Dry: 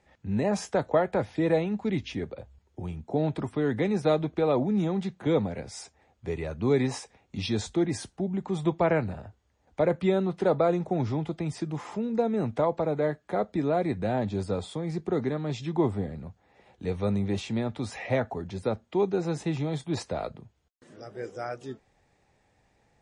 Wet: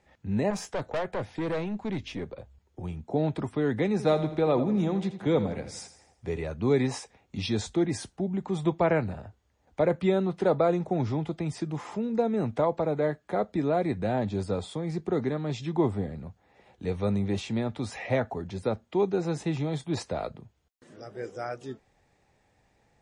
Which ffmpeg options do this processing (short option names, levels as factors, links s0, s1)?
-filter_complex "[0:a]asettb=1/sr,asplit=3[s0][s1][s2];[s0]atrim=end=0.504[s3];[s1]atrim=start=0.5:end=2.84,asetpts=PTS-STARTPTS,afade=t=in:d=0.004:c=qsin,afade=t=out:st=2.336:d=0.004:c=qsin,aeval=exprs='(tanh(20*val(0)+0.35)-tanh(0.35))/20':c=same[s4];[s2]atrim=start=2.836[s5];[s3][s4]acrossfade=d=0.004:c1=hsin:c2=qsin[s6];[s6][s5]acrossfade=d=0.004:c1=qsin:c2=hsin,asettb=1/sr,asplit=3[s7][s8][s9];[s7]atrim=end=3.914[s10];[s8]atrim=start=3.91:end=6.41,asetpts=PTS-STARTPTS,afade=t=in:d=0.004:c=qsin,afade=t=out:st=2.496:d=0.004:c=qsin,aecho=1:1:83|166|249|332|415:0.251|0.116|0.0532|0.0244|0.0112,atrim=end_sample=110250[s11];[s9]atrim=start=6.406[s12];[s10][s11]acrossfade=d=0.004:c1=hsin:c2=qsin[s13];[s13][s12]acrossfade=d=0.004:c1=qsin:c2=hsin"